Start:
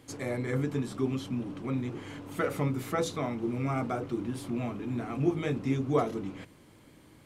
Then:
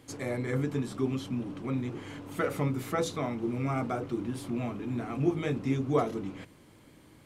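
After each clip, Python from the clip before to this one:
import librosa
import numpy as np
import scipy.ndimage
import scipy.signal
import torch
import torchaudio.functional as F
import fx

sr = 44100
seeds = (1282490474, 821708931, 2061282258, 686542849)

y = x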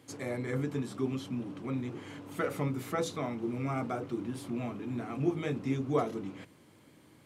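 y = scipy.signal.sosfilt(scipy.signal.butter(2, 95.0, 'highpass', fs=sr, output='sos'), x)
y = y * librosa.db_to_amplitude(-2.5)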